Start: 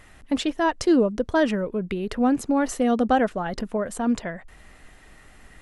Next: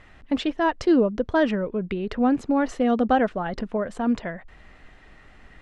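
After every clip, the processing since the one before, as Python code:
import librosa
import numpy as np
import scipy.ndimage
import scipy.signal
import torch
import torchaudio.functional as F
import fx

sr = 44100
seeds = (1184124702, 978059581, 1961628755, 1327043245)

y = scipy.signal.sosfilt(scipy.signal.butter(2, 4000.0, 'lowpass', fs=sr, output='sos'), x)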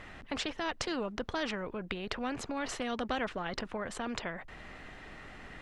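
y = fx.spectral_comp(x, sr, ratio=2.0)
y = y * librosa.db_to_amplitude(-4.5)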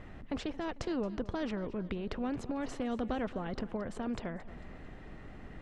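y = fx.tilt_shelf(x, sr, db=7.5, hz=740.0)
y = fx.echo_feedback(y, sr, ms=223, feedback_pct=48, wet_db=-17)
y = y * librosa.db_to_amplitude(-3.0)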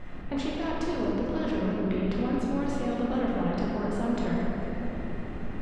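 y = fx.rider(x, sr, range_db=3, speed_s=0.5)
y = fx.room_shoebox(y, sr, seeds[0], volume_m3=210.0, walls='hard', distance_m=0.94)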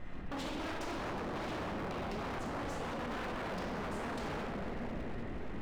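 y = 10.0 ** (-30.0 / 20.0) * (np.abs((x / 10.0 ** (-30.0 / 20.0) + 3.0) % 4.0 - 2.0) - 1.0)
y = y * librosa.db_to_amplitude(-4.0)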